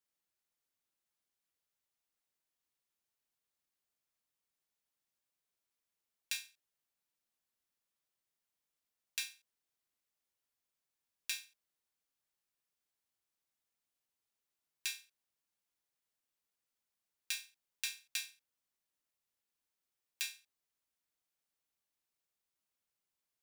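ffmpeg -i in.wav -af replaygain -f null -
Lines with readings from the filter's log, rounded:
track_gain = +35.8 dB
track_peak = 0.109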